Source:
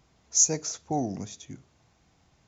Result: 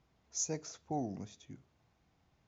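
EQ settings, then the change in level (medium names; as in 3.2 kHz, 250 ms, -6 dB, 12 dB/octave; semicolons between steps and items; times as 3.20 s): distance through air 110 m; -8.0 dB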